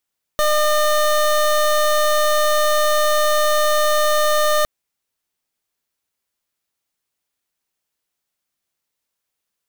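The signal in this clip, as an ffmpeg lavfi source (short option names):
-f lavfi -i "aevalsrc='0.158*(2*lt(mod(605*t,1),0.24)-1)':d=4.26:s=44100"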